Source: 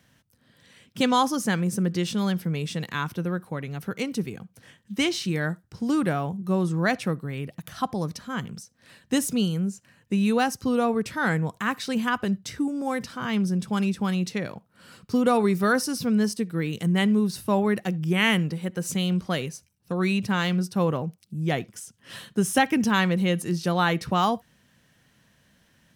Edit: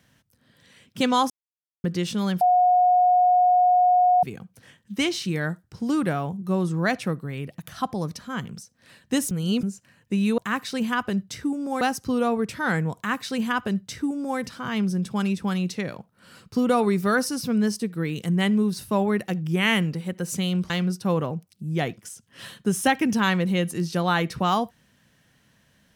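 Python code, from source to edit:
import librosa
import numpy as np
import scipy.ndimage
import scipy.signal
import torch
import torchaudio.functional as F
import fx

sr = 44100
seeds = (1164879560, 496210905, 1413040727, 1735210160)

y = fx.edit(x, sr, fx.silence(start_s=1.3, length_s=0.54),
    fx.bleep(start_s=2.41, length_s=1.82, hz=724.0, db=-14.5),
    fx.reverse_span(start_s=9.31, length_s=0.32),
    fx.duplicate(start_s=11.53, length_s=1.43, to_s=10.38),
    fx.cut(start_s=19.27, length_s=1.14), tone=tone)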